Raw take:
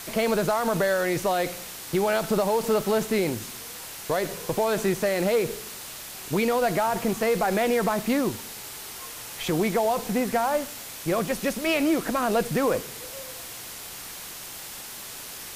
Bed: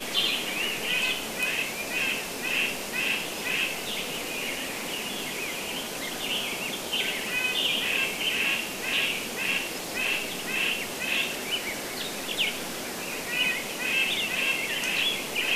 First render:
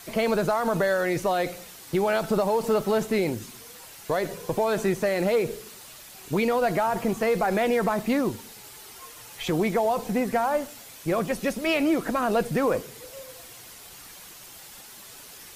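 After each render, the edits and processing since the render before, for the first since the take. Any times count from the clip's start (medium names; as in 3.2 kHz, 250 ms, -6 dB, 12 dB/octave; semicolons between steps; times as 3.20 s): noise reduction 8 dB, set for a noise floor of -39 dBFS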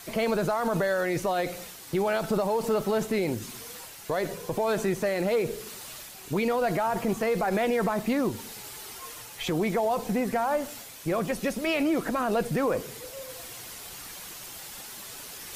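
peak limiter -18.5 dBFS, peak gain reduction 4 dB; reverse; upward compressor, threshold -35 dBFS; reverse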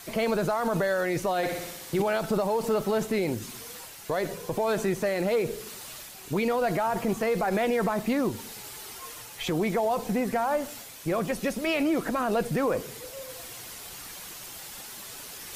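1.37–2.02 s: flutter echo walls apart 10.2 m, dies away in 0.87 s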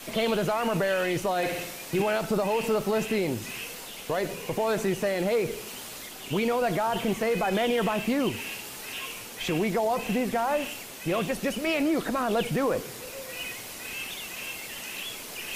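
add bed -11.5 dB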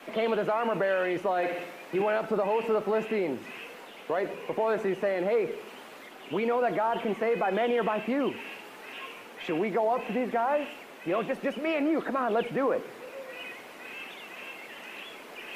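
three-band isolator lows -22 dB, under 210 Hz, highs -19 dB, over 2.6 kHz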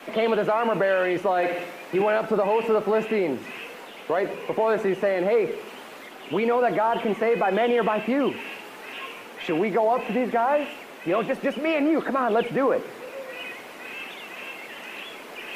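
trim +5 dB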